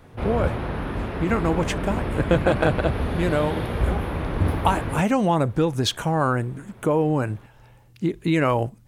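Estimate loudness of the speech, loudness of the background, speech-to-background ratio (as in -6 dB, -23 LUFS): -24.0 LUFS, -27.5 LUFS, 3.5 dB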